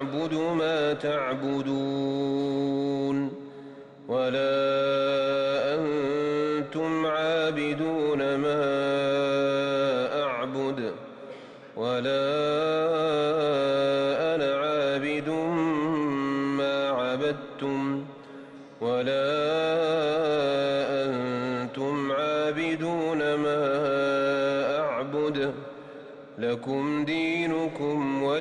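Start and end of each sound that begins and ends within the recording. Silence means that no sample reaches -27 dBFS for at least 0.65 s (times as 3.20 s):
4.09–10.91 s
11.77–18.00 s
18.82–25.51 s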